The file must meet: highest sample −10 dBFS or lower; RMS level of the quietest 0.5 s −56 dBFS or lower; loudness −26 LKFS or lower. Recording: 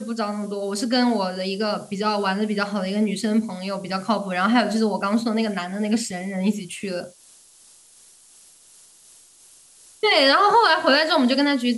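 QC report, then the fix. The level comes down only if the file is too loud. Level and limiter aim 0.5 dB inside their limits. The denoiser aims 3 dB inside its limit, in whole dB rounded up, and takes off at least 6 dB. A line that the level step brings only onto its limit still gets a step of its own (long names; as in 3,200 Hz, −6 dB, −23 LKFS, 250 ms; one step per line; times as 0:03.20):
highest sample −6.0 dBFS: out of spec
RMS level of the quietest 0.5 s −52 dBFS: out of spec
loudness −21.5 LKFS: out of spec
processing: level −5 dB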